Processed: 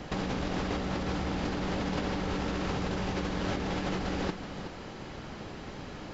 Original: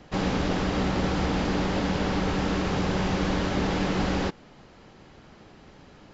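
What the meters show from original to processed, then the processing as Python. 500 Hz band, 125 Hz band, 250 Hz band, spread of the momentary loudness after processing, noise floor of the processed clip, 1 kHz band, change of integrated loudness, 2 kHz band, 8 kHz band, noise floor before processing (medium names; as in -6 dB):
-5.5 dB, -6.0 dB, -6.5 dB, 10 LU, -43 dBFS, -5.5 dB, -7.0 dB, -5.5 dB, no reading, -52 dBFS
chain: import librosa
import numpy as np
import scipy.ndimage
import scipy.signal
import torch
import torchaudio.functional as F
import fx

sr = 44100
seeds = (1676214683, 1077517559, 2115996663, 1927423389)

y = fx.over_compress(x, sr, threshold_db=-33.0, ratio=-1.0)
y = y + 10.0 ** (-10.5 / 20.0) * np.pad(y, (int(373 * sr / 1000.0), 0))[:len(y)]
y = y * librosa.db_to_amplitude(1.0)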